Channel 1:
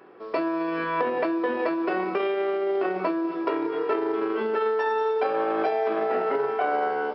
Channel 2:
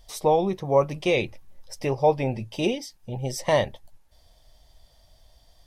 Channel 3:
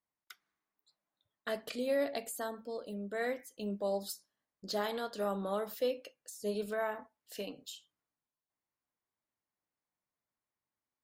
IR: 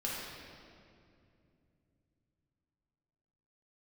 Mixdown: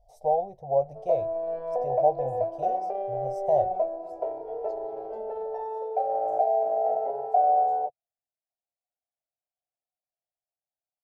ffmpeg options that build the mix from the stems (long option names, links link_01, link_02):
-filter_complex "[0:a]adelay=750,volume=-6dB[link_01];[1:a]volume=-9.5dB[link_02];[2:a]lowpass=8400,acompressor=threshold=-39dB:ratio=6,volume=-9dB[link_03];[link_01][link_02][link_03]amix=inputs=3:normalize=0,firequalizer=gain_entry='entry(130,0);entry(200,-14);entry(330,-16);entry(490,3);entry(720,14);entry(1100,-22);entry(3000,-25);entry(5800,-16)':delay=0.05:min_phase=1"